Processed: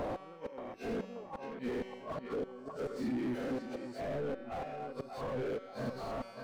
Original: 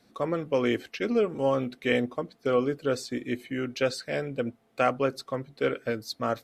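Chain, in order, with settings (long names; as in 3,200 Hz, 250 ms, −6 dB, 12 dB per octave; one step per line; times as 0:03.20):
peak hold with a rise ahead of every peak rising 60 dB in 1.55 s
reverb reduction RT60 1.4 s
dynamic equaliser 230 Hz, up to +5 dB, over −38 dBFS, Q 1.2
harmonic and percussive parts rebalanced percussive −15 dB
parametric band 820 Hz +11 dB 0.7 octaves
gate with flip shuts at −17 dBFS, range −33 dB
0:02.00–0:02.59: flanger swept by the level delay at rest 2.1 ms, full sweep at −25.5 dBFS
soft clipping −29.5 dBFS, distortion −10 dB
tuned comb filter 190 Hz, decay 0.95 s, mix 60%
downward compressor, threshold −46 dBFS, peak gain reduction 7.5 dB
on a send: feedback echo with a low-pass in the loop 580 ms, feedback 42%, low-pass 1,500 Hz, level −10.5 dB
on the sum: slew-rate limiting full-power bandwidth 2.1 Hz
level +13.5 dB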